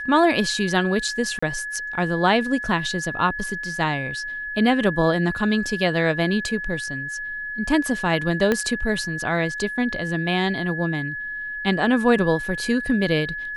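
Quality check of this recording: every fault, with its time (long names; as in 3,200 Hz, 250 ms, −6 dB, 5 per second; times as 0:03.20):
whistle 1,700 Hz −28 dBFS
0:01.39–0:01.43: drop-out 35 ms
0:08.52: click −8 dBFS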